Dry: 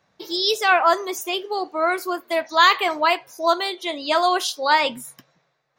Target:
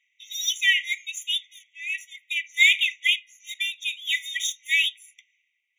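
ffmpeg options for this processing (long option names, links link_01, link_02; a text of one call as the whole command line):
ffmpeg -i in.wav -af "adynamicsmooth=sensitivity=5:basefreq=3900,afreqshift=410,afftfilt=real='re*eq(mod(floor(b*sr/1024/1900),2),1)':imag='im*eq(mod(floor(b*sr/1024/1900),2),1)':win_size=1024:overlap=0.75,volume=3.5dB" out.wav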